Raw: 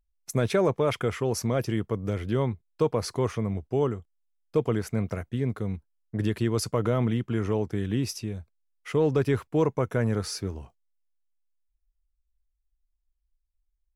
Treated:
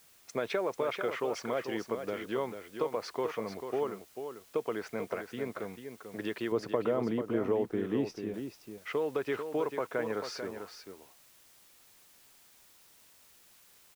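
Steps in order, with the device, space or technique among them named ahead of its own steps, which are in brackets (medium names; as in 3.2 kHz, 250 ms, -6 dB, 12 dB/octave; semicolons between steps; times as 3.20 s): baby monitor (band-pass 430–3500 Hz; compression, threshold -28 dBFS, peak gain reduction 7.5 dB; white noise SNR 24 dB); 6.52–8.34 s: tilt shelf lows +7.5 dB, about 830 Hz; delay 442 ms -8 dB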